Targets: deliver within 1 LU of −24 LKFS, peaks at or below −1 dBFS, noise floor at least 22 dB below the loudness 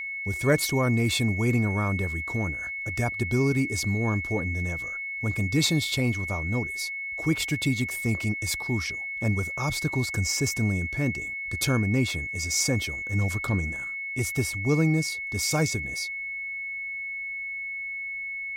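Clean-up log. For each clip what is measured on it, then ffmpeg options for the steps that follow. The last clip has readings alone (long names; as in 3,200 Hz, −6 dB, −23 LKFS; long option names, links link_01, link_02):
interfering tone 2,200 Hz; level of the tone −31 dBFS; integrated loudness −26.5 LKFS; sample peak −11.0 dBFS; target loudness −24.0 LKFS
→ -af "bandreject=frequency=2200:width=30"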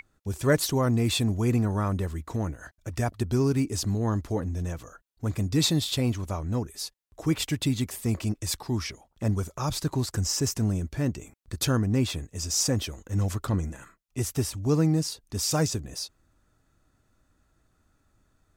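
interfering tone none found; integrated loudness −28.0 LKFS; sample peak −11.5 dBFS; target loudness −24.0 LKFS
→ -af "volume=4dB"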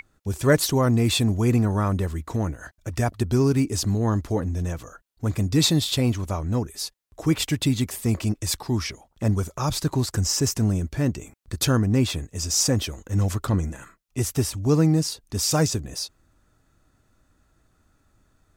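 integrated loudness −24.0 LKFS; sample peak −7.5 dBFS; background noise floor −66 dBFS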